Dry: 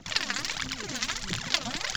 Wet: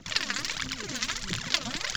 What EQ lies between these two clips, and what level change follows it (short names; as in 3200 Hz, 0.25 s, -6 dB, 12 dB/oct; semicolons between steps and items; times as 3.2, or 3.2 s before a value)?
bell 780 Hz -6.5 dB 0.36 oct; 0.0 dB